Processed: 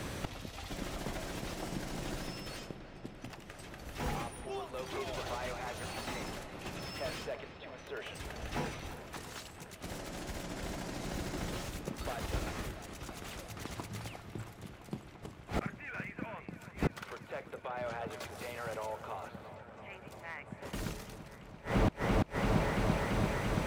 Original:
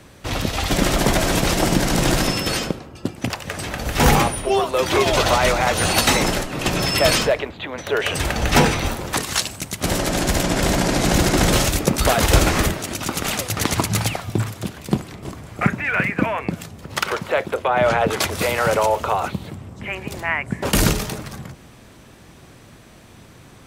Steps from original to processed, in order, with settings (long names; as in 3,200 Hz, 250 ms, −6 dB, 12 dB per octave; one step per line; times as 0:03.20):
delay with a low-pass on its return 339 ms, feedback 84%, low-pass 2,800 Hz, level −13.5 dB
gate with flip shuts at −21 dBFS, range −27 dB
slew-rate limiting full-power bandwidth 16 Hz
level +5 dB